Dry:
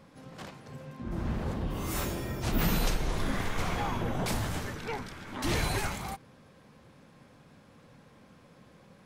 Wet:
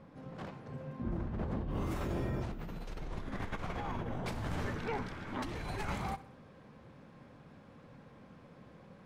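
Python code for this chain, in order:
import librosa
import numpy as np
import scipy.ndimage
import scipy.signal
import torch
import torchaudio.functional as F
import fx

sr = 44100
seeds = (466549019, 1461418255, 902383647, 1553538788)

y = fx.lowpass(x, sr, hz=fx.steps((0.0, 1200.0), (2.81, 2000.0)), slope=6)
y = fx.over_compress(y, sr, threshold_db=-35.0, ratio=-1.0)
y = fx.echo_feedback(y, sr, ms=63, feedback_pct=49, wet_db=-17.5)
y = y * 10.0 ** (-2.5 / 20.0)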